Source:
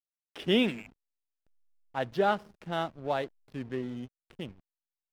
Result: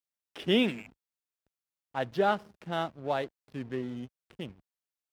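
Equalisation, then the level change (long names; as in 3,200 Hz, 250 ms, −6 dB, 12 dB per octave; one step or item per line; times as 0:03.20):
high-pass filter 52 Hz
0.0 dB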